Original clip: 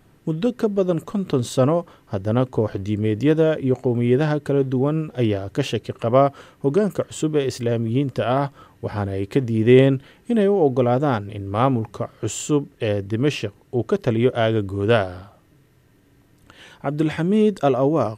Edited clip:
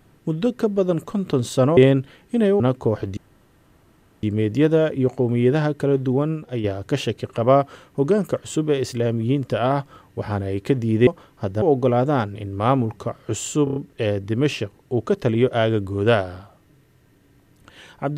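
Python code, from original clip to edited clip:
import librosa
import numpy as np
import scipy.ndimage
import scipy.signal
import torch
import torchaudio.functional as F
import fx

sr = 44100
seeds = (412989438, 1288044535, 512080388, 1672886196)

y = fx.edit(x, sr, fx.swap(start_s=1.77, length_s=0.55, other_s=9.73, other_length_s=0.83),
    fx.insert_room_tone(at_s=2.89, length_s=1.06),
    fx.fade_out_to(start_s=4.83, length_s=0.47, floor_db=-7.5),
    fx.stutter(start_s=12.58, slice_s=0.03, count=5), tone=tone)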